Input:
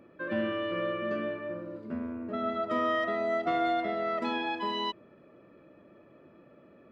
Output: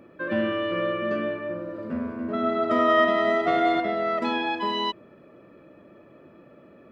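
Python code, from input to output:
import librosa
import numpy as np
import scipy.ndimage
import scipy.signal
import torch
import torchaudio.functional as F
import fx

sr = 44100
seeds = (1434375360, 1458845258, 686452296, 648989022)

y = fx.echo_heads(x, sr, ms=94, heads='all three', feedback_pct=48, wet_db=-10.0, at=(1.5, 3.8))
y = y * 10.0 ** (5.5 / 20.0)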